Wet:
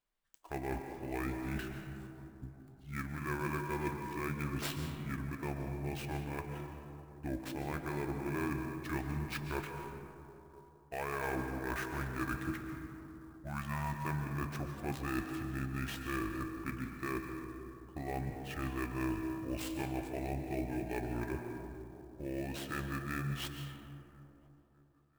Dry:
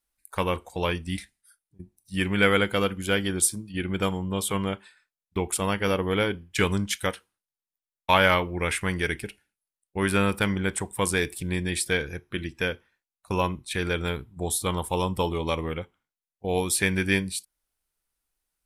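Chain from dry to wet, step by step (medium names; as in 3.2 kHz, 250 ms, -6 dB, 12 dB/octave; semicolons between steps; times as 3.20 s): median filter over 5 samples; time-frequency box 9.84–10.31 s, 320–710 Hz -18 dB; reverse; compression 6:1, threshold -33 dBFS, peak gain reduction 17 dB; reverse; feedback comb 430 Hz, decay 0.19 s, harmonics odd, mix 60%; feedback echo behind a band-pass 750 ms, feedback 36%, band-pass 800 Hz, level -22 dB; on a send at -4 dB: reverberation RT60 2.4 s, pre-delay 65 ms; on the sum: speed mistake 45 rpm record played at 33 rpm; sampling jitter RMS 0.021 ms; trim +4 dB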